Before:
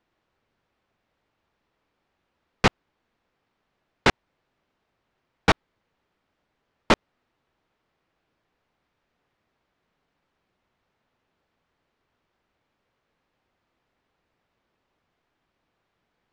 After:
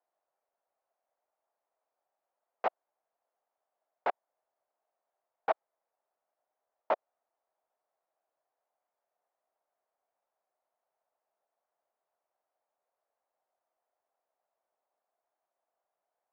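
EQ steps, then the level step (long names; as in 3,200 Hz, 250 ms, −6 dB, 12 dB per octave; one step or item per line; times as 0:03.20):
four-pole ladder band-pass 750 Hz, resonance 60%
0.0 dB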